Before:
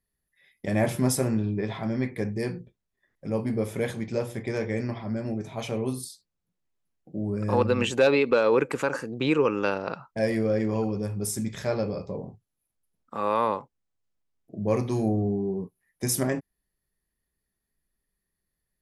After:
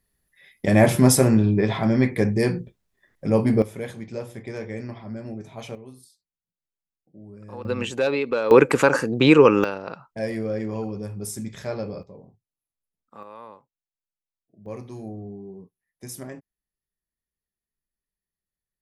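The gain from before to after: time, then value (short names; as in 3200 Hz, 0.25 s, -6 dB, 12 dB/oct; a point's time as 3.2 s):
+8.5 dB
from 3.62 s -4 dB
from 5.75 s -14.5 dB
from 7.65 s -2.5 dB
from 8.51 s +9.5 dB
from 9.64 s -2.5 dB
from 12.03 s -11 dB
from 13.23 s -18 dB
from 14.66 s -11 dB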